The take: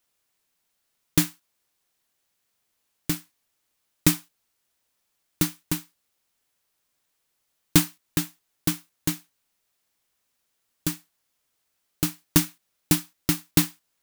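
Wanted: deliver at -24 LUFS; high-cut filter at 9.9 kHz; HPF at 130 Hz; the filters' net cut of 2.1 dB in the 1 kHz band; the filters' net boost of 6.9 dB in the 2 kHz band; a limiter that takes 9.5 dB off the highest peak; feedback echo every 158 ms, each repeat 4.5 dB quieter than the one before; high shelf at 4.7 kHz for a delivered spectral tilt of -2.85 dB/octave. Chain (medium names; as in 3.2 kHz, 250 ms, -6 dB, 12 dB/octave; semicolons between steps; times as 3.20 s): high-pass 130 Hz; low-pass 9.9 kHz; peaking EQ 1 kHz -6.5 dB; peaking EQ 2 kHz +9 dB; treble shelf 4.7 kHz +5.5 dB; peak limiter -10 dBFS; feedback delay 158 ms, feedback 60%, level -4.5 dB; trim +5 dB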